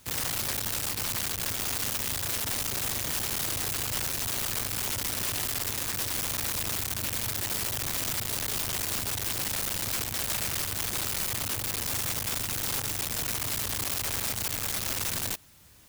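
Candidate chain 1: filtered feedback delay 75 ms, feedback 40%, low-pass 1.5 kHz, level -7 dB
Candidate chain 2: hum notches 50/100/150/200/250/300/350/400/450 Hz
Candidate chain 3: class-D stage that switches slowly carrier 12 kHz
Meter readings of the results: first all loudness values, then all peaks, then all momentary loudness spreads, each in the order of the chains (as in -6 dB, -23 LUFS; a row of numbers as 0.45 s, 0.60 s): -28.5 LUFS, -28.5 LUFS, -33.0 LUFS; -19.5 dBFS, -19.5 dBFS, -20.0 dBFS; 1 LU, 1 LU, 1 LU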